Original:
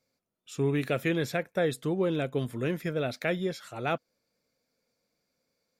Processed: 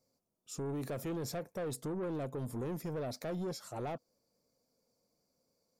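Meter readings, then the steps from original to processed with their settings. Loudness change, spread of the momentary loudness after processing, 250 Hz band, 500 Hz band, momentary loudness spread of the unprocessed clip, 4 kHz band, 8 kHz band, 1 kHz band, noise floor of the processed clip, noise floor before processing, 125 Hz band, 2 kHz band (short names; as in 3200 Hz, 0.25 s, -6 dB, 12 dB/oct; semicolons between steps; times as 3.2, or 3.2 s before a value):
-9.0 dB, 3 LU, -8.5 dB, -9.5 dB, 5 LU, -10.0 dB, -0.5 dB, -8.0 dB, -82 dBFS, -81 dBFS, -8.0 dB, -17.5 dB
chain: band shelf 2300 Hz -12.5 dB; limiter -27 dBFS, peak gain reduction 9.5 dB; soft clip -34.5 dBFS, distortion -12 dB; gain +1 dB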